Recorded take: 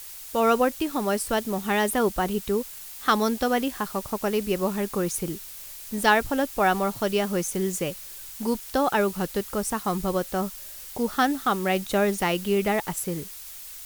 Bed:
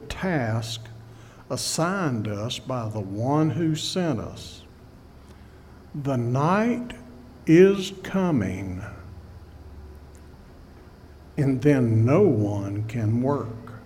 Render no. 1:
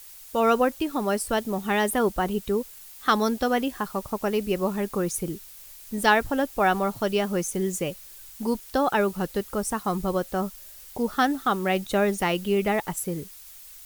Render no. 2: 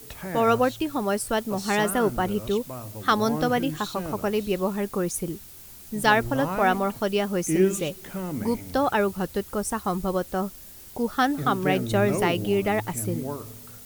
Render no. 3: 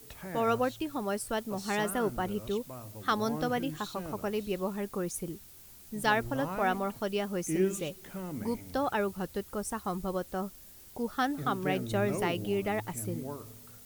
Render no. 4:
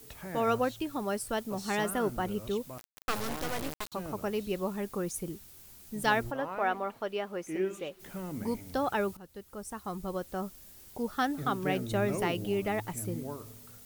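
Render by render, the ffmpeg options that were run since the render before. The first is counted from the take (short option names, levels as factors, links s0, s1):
-af "afftdn=nr=6:nf=-41"
-filter_complex "[1:a]volume=0.355[s0];[0:a][s0]amix=inputs=2:normalize=0"
-af "volume=0.422"
-filter_complex "[0:a]asettb=1/sr,asplit=3[s0][s1][s2];[s0]atrim=end=2.784[s3];[s1]atrim=start=2.78:end=3.92,asetpts=PTS-STARTPTS,afade=t=in:d=0.004:c=qsin,afade=t=out:st=1.136:d=0.004:c=qsin,acrusher=bits=3:dc=4:mix=0:aa=0.000001[s4];[s2]atrim=start=3.916[s5];[s3][s4]acrossfade=d=0.004:c1=hsin:c2=qsin[s6];[s6][s5]acrossfade=d=0.004:c1=qsin:c2=hsin,asplit=3[s7][s8][s9];[s7]afade=t=out:st=6.3:d=0.02[s10];[s8]bass=f=250:g=-14,treble=f=4000:g=-13,afade=t=in:st=6.3:d=0.02,afade=t=out:st=7.99:d=0.02[s11];[s9]afade=t=in:st=7.99:d=0.02[s12];[s10][s11][s12]amix=inputs=3:normalize=0,asplit=2[s13][s14];[s13]atrim=end=9.17,asetpts=PTS-STARTPTS,afade=t=out:st=9.166:d=0.004:c=hsin:silence=0.149624[s15];[s14]atrim=start=9.17,asetpts=PTS-STARTPTS,afade=t=in:d=1.8:c=qsin:silence=0.149624[s16];[s15][s16]concat=n=2:v=0:a=1"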